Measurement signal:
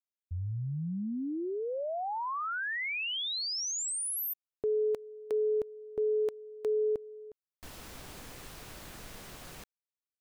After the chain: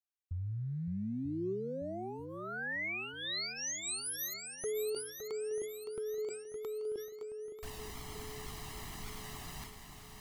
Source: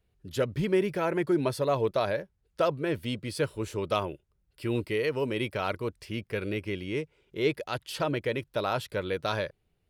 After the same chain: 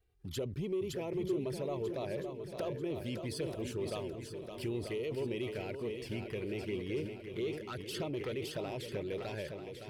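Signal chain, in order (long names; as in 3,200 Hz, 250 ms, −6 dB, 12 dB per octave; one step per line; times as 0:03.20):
dynamic equaliser 380 Hz, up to +8 dB, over −47 dBFS, Q 5.6
downward compressor 3 to 1, threshold −42 dBFS
leveller curve on the samples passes 1
flanger swept by the level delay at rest 2.6 ms, full sweep at −33 dBFS
feedback echo with a long and a short gap by turns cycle 940 ms, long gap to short 1.5 to 1, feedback 44%, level −8 dB
level that may fall only so fast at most 69 dB per second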